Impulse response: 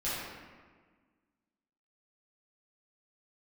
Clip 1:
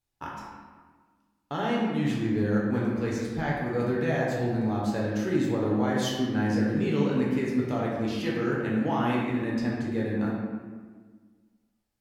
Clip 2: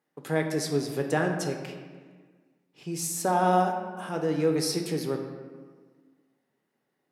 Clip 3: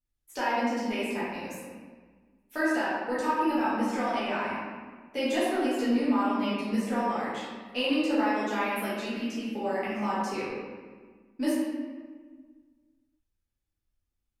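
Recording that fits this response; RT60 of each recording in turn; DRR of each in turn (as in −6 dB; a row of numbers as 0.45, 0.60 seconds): 3; 1.5, 1.5, 1.5 seconds; −5.0, 3.0, −11.5 decibels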